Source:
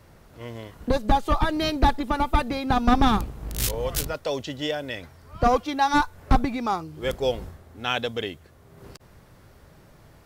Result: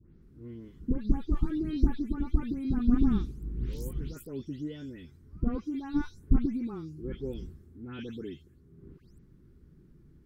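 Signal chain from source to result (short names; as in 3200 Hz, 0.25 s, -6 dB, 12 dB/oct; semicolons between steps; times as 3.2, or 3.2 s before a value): spectral delay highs late, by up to 0.218 s; EQ curve 360 Hz 0 dB, 630 Hz -28 dB, 1500 Hz -17 dB, 2400 Hz -20 dB; gain -2.5 dB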